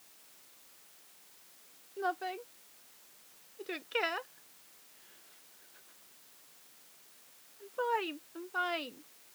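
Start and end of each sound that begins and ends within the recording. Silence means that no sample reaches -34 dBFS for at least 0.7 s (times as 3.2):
2–2.32
3.69–4.19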